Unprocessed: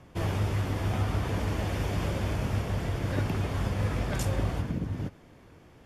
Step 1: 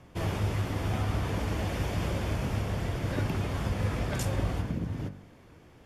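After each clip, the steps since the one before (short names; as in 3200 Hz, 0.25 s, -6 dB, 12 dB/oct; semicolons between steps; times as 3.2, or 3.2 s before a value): de-hum 48.1 Hz, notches 40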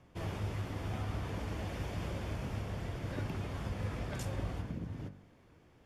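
high shelf 9000 Hz -4.5 dB; gain -8 dB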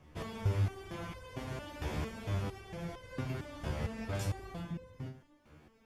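stepped resonator 4.4 Hz 75–510 Hz; gain +11.5 dB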